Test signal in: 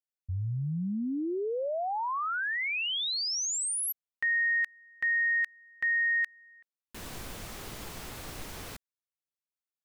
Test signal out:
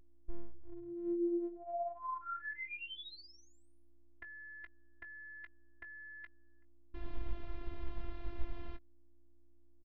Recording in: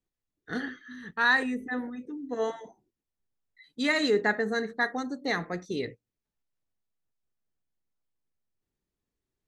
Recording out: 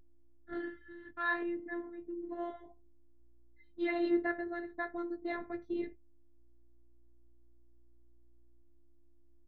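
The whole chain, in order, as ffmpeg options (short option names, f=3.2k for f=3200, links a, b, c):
-filter_complex "[0:a]equalizer=f=110:t=o:w=0.35:g=-2.5,asplit=2[a][b];[b]adelay=19,volume=-10.5dB[c];[a][c]amix=inputs=2:normalize=0,aeval=exprs='val(0)+0.000708*(sin(2*PI*60*n/s)+sin(2*PI*2*60*n/s)/2+sin(2*PI*3*60*n/s)/3+sin(2*PI*4*60*n/s)/4+sin(2*PI*5*60*n/s)/5)':c=same,aemphasis=mode=reproduction:type=riaa,afftfilt=real='hypot(re,im)*cos(PI*b)':imag='0':win_size=512:overlap=0.75,lowpass=f=3.9k:w=0.5412,lowpass=f=3.9k:w=1.3066,volume=-6.5dB"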